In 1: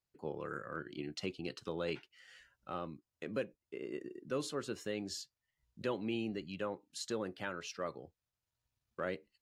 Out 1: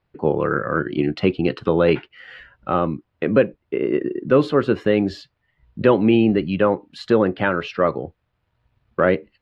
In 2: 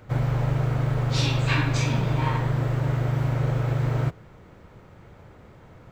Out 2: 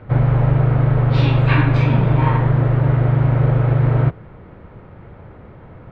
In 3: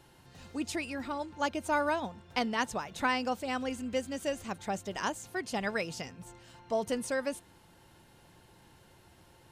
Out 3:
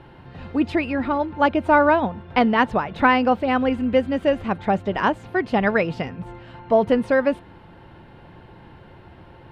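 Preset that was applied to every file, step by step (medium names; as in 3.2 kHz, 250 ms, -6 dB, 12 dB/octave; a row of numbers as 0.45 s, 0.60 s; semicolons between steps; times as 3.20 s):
distance through air 450 m; peak normalisation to -3 dBFS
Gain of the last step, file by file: +23.0 dB, +9.5 dB, +15.5 dB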